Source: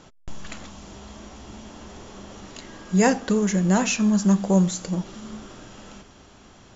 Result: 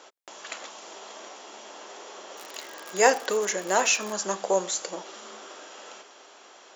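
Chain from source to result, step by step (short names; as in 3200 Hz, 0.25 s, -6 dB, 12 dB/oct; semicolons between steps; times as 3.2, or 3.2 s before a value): 0.62–1.32 transient shaper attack +8 dB, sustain +2 dB; 2.37–4.14 crackle 100/s -28 dBFS; HPF 420 Hz 24 dB/oct; gain +2.5 dB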